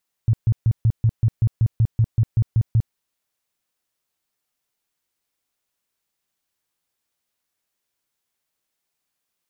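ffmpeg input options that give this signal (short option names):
-f lavfi -i "aevalsrc='0.237*sin(2*PI*113*mod(t,0.19))*lt(mod(t,0.19),6/113)':d=2.66:s=44100"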